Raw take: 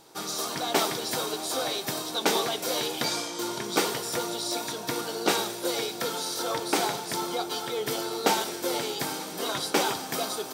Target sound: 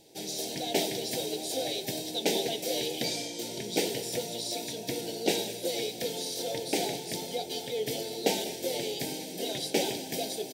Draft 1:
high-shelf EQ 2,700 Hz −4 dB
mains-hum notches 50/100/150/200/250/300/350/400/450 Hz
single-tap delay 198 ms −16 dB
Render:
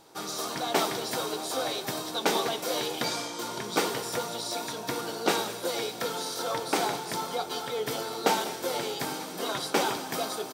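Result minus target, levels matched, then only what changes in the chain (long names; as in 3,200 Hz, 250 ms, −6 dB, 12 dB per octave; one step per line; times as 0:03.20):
1,000 Hz band +7.5 dB
add first: Butterworth band-reject 1,200 Hz, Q 0.82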